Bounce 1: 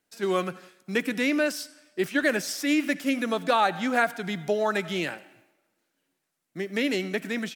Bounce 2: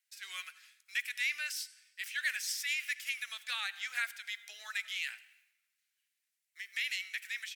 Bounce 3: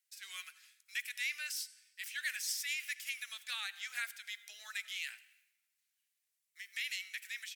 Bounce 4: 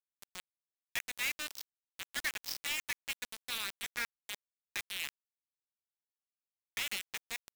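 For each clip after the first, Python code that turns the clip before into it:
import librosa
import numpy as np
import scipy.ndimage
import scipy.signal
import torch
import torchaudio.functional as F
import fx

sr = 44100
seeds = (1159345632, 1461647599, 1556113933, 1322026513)

y1 = scipy.signal.sosfilt(scipy.signal.cheby1(3, 1.0, 2000.0, 'highpass', fs=sr, output='sos'), x)
y1 = y1 * 10.0 ** (-3.0 / 20.0)
y2 = fx.high_shelf(y1, sr, hz=4000.0, db=7.5)
y2 = y2 * 10.0 ** (-6.0 / 20.0)
y3 = scipy.signal.sosfilt(scipy.signal.cheby1(8, 1.0, 5500.0, 'lowpass', fs=sr, output='sos'), y2)
y3 = fx.quant_dither(y3, sr, seeds[0], bits=6, dither='none')
y3 = fx.buffer_crackle(y3, sr, first_s=0.99, period_s=0.92, block=512, kind='zero')
y3 = y3 * 10.0 ** (2.5 / 20.0)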